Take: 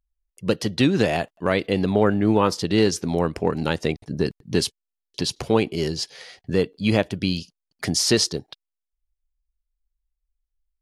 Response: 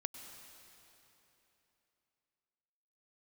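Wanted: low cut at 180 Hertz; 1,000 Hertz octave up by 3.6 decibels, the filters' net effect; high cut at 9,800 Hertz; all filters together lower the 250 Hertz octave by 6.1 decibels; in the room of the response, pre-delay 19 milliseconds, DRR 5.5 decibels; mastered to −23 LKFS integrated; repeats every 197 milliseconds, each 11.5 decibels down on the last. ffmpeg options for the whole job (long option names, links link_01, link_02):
-filter_complex "[0:a]highpass=180,lowpass=9800,equalizer=frequency=250:width_type=o:gain=-7,equalizer=frequency=1000:width_type=o:gain=5,aecho=1:1:197|394|591:0.266|0.0718|0.0194,asplit=2[link_01][link_02];[1:a]atrim=start_sample=2205,adelay=19[link_03];[link_02][link_03]afir=irnorm=-1:irlink=0,volume=-4dB[link_04];[link_01][link_04]amix=inputs=2:normalize=0,volume=0.5dB"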